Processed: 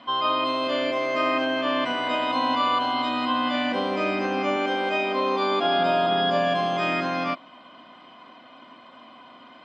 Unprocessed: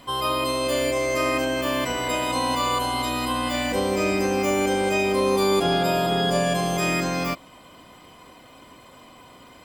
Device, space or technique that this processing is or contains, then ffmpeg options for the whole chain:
kitchen radio: -filter_complex "[0:a]highpass=230,equalizer=frequency=240:width_type=q:width=4:gain=8,equalizer=frequency=450:width_type=q:width=4:gain=-7,equalizer=frequency=670:width_type=q:width=4:gain=6,equalizer=frequency=1100:width_type=q:width=4:gain=5,equalizer=frequency=1500:width_type=q:width=4:gain=5,equalizer=frequency=3100:width_type=q:width=4:gain=4,lowpass=frequency=4300:width=0.5412,lowpass=frequency=4300:width=1.3066,asettb=1/sr,asplit=3[link_01][link_02][link_03];[link_01]atrim=end=4.564[link_04];[link_02]atrim=start=4.56:end=5.79,asetpts=PTS-STARTPTS,afade=type=in:duration=0.004:curve=qsin,afade=type=out:start_time=1.226:duration=0.004:curve=qsin,highpass=240[link_05];[link_03]atrim=start=5.786[link_06];[link_04][link_05]acrossfade=duration=0.004:curve1=hsin:curve2=qsin[link_07];[link_07][link_06]acrossfade=duration=0.004:curve1=qsin:curve2=hsin,volume=-2.5dB"

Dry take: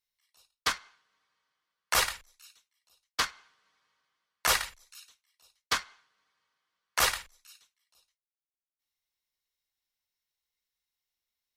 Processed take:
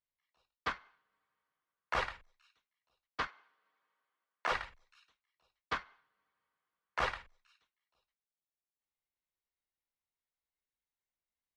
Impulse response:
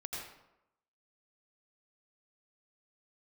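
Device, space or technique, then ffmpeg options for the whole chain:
phone in a pocket: -filter_complex "[0:a]asettb=1/sr,asplit=3[link_01][link_02][link_03];[link_01]atrim=end=3.274[link_04];[link_02]atrim=start=3.27:end=4.52,asetpts=PTS-STARTPTS,afade=type=in:duration=0.004:curve=qsin,afade=type=out:start_time=1.246:duration=0.004:curve=qsin,highpass=280[link_05];[link_03]atrim=start=4.516[link_06];[link_04][link_05]acrossfade=duration=0.004:curve1=hsin:curve2=qsin[link_07];[link_07][link_06]acrossfade=duration=0.004:curve1=qsin:curve2=hsin,lowpass=3100,highshelf=frequency=2200:gain=-10,volume=-2.5dB"

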